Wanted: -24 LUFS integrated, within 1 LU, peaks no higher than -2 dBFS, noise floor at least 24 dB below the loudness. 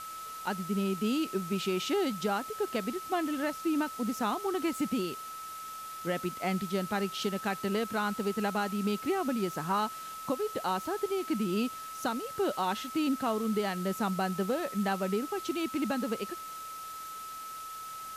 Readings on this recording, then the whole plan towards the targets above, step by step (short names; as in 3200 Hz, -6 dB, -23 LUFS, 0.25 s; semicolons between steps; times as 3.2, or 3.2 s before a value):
steady tone 1300 Hz; tone level -40 dBFS; noise floor -42 dBFS; noise floor target -57 dBFS; loudness -32.5 LUFS; peak -18.5 dBFS; loudness target -24.0 LUFS
-> notch 1300 Hz, Q 30; noise print and reduce 15 dB; gain +8.5 dB